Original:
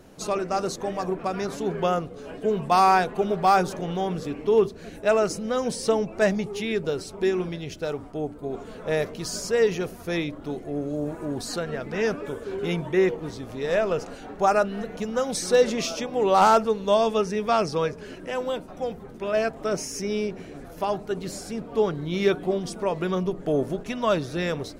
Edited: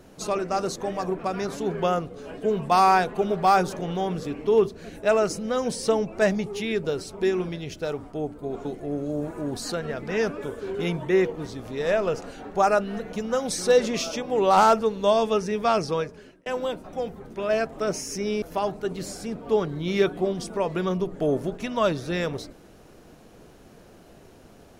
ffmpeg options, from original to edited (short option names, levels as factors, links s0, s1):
-filter_complex "[0:a]asplit=4[s0][s1][s2][s3];[s0]atrim=end=8.652[s4];[s1]atrim=start=10.488:end=18.3,asetpts=PTS-STARTPTS,afade=t=out:st=7.242:d=0.57[s5];[s2]atrim=start=18.3:end=20.262,asetpts=PTS-STARTPTS,afade=t=in:d=0.004:c=hsin[s6];[s3]atrim=start=20.678[s7];[s5][s6]concat=n=2:v=0:a=1[s8];[s4][s8]acrossfade=d=0.004:c1=hsin:c2=hsin[s9];[s9][s7]acrossfade=d=0.004:c1=hsin:c2=hsin"